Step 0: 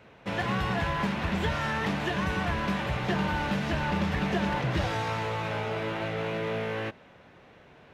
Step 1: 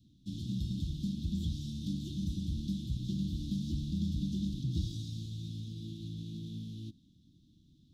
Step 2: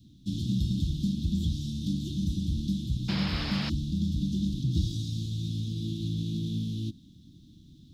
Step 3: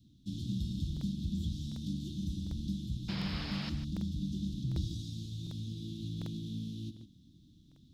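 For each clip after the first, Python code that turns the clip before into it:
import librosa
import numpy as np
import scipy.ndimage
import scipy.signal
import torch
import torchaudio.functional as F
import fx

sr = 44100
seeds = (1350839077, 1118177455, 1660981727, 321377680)

y1 = scipy.signal.sosfilt(scipy.signal.cheby1(5, 1.0, [310.0, 3500.0], 'bandstop', fs=sr, output='sos'), x)
y1 = fx.low_shelf(y1, sr, hz=110.0, db=5.5)
y1 = y1 * 10.0 ** (-5.5 / 20.0)
y2 = fx.rider(y1, sr, range_db=4, speed_s=2.0)
y2 = fx.spec_paint(y2, sr, seeds[0], shape='noise', start_s=3.08, length_s=0.62, low_hz=310.0, high_hz=5400.0, level_db=-43.0)
y2 = y2 * 10.0 ** (6.5 / 20.0)
y3 = y2 + 10.0 ** (-11.0 / 20.0) * np.pad(y2, (int(149 * sr / 1000.0), 0))[:len(y2)]
y3 = fx.buffer_crackle(y3, sr, first_s=0.92, period_s=0.75, block=2048, kind='repeat')
y3 = y3 * 10.0 ** (-7.5 / 20.0)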